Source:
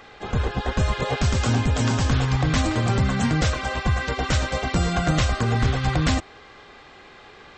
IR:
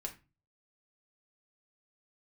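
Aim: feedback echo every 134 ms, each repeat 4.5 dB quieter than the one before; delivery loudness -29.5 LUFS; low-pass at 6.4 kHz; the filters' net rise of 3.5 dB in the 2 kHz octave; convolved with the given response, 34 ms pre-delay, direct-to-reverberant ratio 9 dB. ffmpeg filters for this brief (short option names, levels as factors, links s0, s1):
-filter_complex "[0:a]lowpass=6400,equalizer=f=2000:t=o:g=4.5,aecho=1:1:134|268|402|536|670|804|938|1072|1206:0.596|0.357|0.214|0.129|0.0772|0.0463|0.0278|0.0167|0.01,asplit=2[s0][s1];[1:a]atrim=start_sample=2205,adelay=34[s2];[s1][s2]afir=irnorm=-1:irlink=0,volume=0.422[s3];[s0][s3]amix=inputs=2:normalize=0,volume=0.335"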